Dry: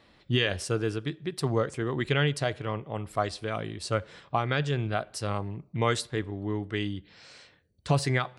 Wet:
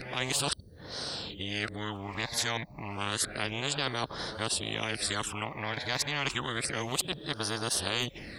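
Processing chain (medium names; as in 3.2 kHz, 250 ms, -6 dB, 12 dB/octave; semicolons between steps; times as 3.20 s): reverse the whole clip; phase shifter stages 8, 0.3 Hz, lowest notch 370–2500 Hz; spectrum-flattening compressor 4:1; trim -1.5 dB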